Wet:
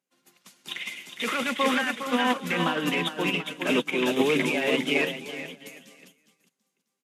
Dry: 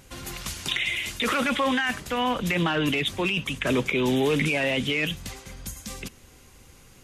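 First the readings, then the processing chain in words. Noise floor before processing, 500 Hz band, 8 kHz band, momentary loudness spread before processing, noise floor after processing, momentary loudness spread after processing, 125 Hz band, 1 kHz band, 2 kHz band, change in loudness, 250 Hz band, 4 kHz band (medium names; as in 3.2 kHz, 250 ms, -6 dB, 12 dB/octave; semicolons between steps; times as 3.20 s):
-52 dBFS, 0.0 dB, -4.0 dB, 14 LU, -81 dBFS, 13 LU, -7.5 dB, 0.0 dB, -1.0 dB, -1.0 dB, -0.5 dB, -2.0 dB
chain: steep high-pass 170 Hz 36 dB/octave; on a send: bouncing-ball echo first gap 410 ms, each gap 0.8×, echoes 5; on the sum: upward expansion 2.5:1, over -43 dBFS; trim +1.5 dB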